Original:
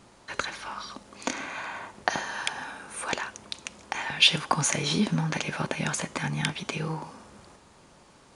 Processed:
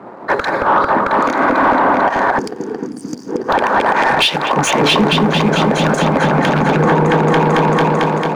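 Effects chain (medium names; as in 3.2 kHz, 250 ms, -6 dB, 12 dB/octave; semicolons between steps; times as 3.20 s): local Wiener filter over 15 samples; on a send: delay with an opening low-pass 223 ms, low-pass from 750 Hz, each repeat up 1 oct, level 0 dB; on the sum: compression 16:1, threshold -34 dBFS, peak gain reduction 21.5 dB; time-frequency box 2.86–3.28 s, 330–4100 Hz -15 dB; bass shelf 170 Hz -6 dB; time-frequency box 2.39–3.49 s, 510–4500 Hz -23 dB; in parallel at -11 dB: companded quantiser 4-bit; on the sum: high-pass 100 Hz; tilt shelf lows +4 dB, about 840 Hz; overdrive pedal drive 26 dB, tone 1.3 kHz, clips at -13.5 dBFS; loudness maximiser +20 dB; three bands expanded up and down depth 70%; trim -4.5 dB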